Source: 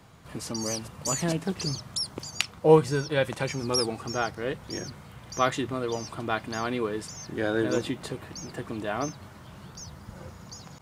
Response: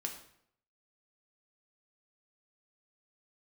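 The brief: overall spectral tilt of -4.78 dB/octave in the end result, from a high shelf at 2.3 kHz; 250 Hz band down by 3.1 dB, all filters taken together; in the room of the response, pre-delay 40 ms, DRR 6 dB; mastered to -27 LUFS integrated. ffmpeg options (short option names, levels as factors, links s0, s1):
-filter_complex "[0:a]equalizer=f=250:t=o:g=-4.5,highshelf=f=2300:g=-6,asplit=2[s0][s1];[1:a]atrim=start_sample=2205,adelay=40[s2];[s1][s2]afir=irnorm=-1:irlink=0,volume=0.501[s3];[s0][s3]amix=inputs=2:normalize=0,volume=1.33"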